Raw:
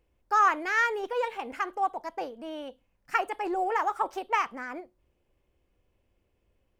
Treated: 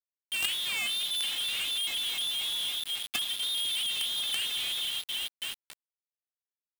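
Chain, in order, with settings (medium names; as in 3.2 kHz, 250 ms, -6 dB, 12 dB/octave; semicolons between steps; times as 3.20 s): partial rectifier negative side -7 dB; bass shelf 190 Hz -9 dB; on a send: delay with an opening low-pass 271 ms, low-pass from 400 Hz, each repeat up 1 oct, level -6 dB; on the sum: flange 0.39 Hz, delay 5.8 ms, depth 2.4 ms, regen +79%; gate -46 dBFS, range -14 dB; peaking EQ 570 Hz +15 dB 1.8 oct; frequency inversion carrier 4 kHz; companded quantiser 2-bit; saturation -7.5 dBFS, distortion -14 dB; trim -5.5 dB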